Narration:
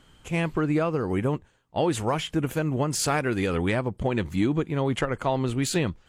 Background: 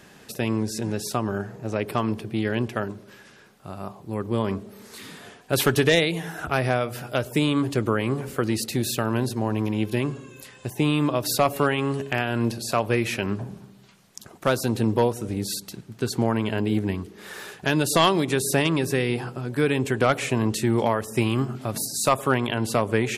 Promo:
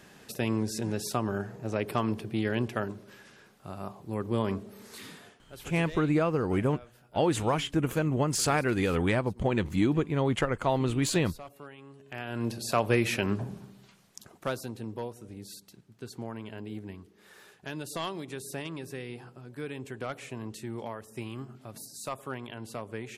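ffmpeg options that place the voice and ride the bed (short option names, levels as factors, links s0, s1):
-filter_complex "[0:a]adelay=5400,volume=0.841[s0];[1:a]volume=8.91,afade=t=out:st=5.05:d=0.43:silence=0.0891251,afade=t=in:st=12.01:d=0.87:silence=0.0707946,afade=t=out:st=13.69:d=1.05:silence=0.199526[s1];[s0][s1]amix=inputs=2:normalize=0"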